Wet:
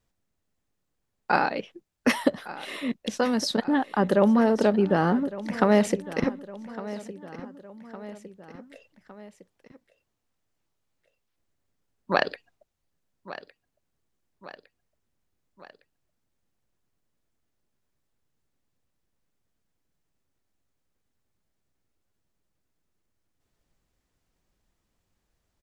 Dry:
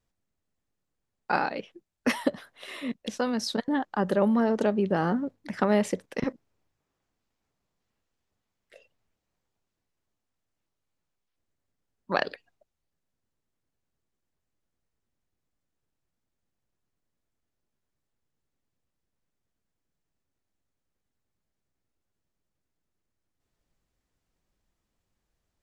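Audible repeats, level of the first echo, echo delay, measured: 3, -16.0 dB, 1159 ms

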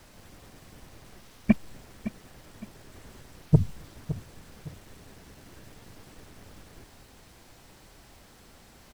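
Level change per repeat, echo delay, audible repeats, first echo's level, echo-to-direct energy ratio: -9.5 dB, 562 ms, 2, -13.5 dB, -13.0 dB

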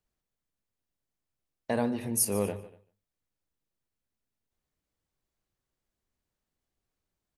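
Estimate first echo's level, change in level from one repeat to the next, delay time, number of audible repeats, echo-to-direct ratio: -17.5 dB, no regular repeats, 147 ms, 2, -16.5 dB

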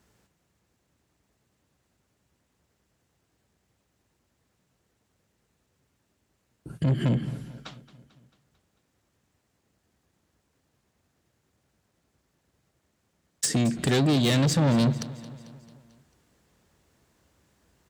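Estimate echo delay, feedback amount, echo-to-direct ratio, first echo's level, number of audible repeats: 222 ms, 57%, -16.0 dB, -17.5 dB, 4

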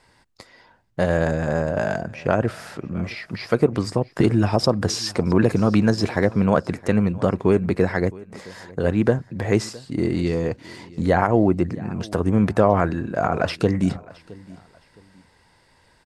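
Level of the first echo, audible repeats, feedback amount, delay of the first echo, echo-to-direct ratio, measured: -21.5 dB, 2, 29%, 665 ms, -21.0 dB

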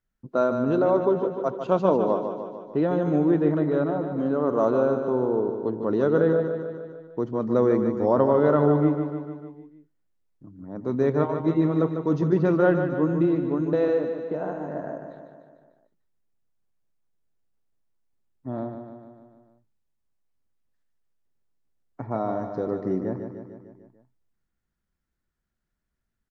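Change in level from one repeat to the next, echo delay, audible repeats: -4.5 dB, 149 ms, 6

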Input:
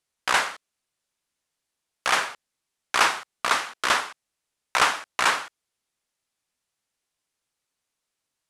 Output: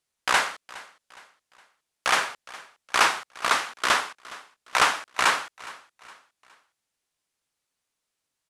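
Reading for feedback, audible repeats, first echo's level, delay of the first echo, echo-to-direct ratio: 41%, 2, -20.0 dB, 414 ms, -19.0 dB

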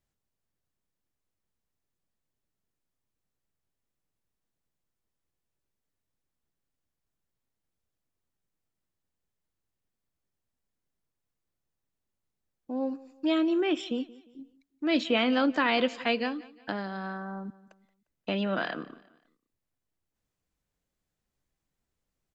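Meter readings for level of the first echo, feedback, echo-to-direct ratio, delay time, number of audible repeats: -20.5 dB, 39%, -20.0 dB, 176 ms, 2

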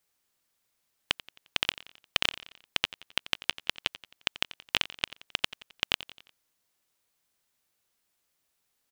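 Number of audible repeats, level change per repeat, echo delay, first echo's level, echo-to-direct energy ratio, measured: 3, -6.0 dB, 88 ms, -17.0 dB, -16.0 dB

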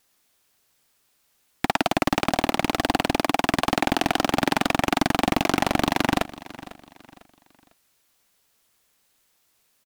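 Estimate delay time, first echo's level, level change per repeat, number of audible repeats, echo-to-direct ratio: 500 ms, -18.0 dB, -9.5 dB, 2, -17.5 dB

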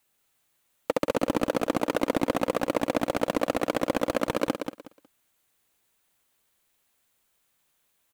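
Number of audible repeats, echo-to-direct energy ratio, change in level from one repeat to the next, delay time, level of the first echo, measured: 3, -7.0 dB, -13.0 dB, 183 ms, -7.0 dB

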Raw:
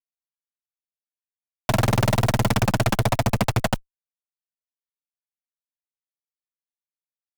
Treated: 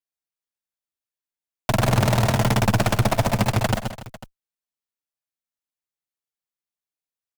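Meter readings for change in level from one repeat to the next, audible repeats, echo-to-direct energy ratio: no regular repeats, 4, -6.0 dB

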